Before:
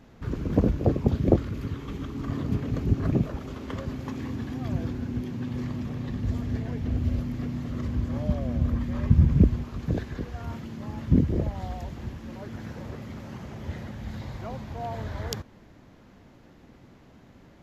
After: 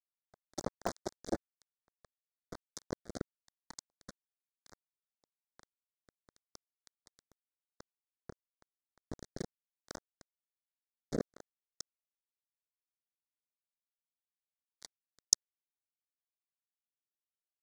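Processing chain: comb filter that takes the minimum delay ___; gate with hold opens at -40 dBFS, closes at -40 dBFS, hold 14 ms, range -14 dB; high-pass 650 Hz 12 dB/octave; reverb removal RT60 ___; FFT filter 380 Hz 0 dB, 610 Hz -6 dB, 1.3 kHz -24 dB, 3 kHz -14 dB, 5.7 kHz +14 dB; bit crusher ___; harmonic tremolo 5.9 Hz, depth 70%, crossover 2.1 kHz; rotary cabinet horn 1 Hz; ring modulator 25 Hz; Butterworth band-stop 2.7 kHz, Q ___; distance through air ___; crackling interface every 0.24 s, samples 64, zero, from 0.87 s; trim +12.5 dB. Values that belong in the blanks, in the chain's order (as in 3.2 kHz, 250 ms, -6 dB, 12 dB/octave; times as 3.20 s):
1.1 ms, 0.61 s, 6-bit, 1.4, 92 m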